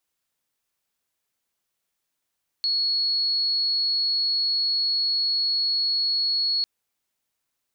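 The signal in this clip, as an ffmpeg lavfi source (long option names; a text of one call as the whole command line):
ffmpeg -f lavfi -i "sine=frequency=4350:duration=4:sample_rate=44100,volume=-2.44dB" out.wav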